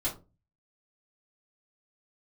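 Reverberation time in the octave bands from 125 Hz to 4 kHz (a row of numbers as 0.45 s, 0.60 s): 0.60 s, 0.40 s, 0.35 s, 0.25 s, 0.20 s, 0.15 s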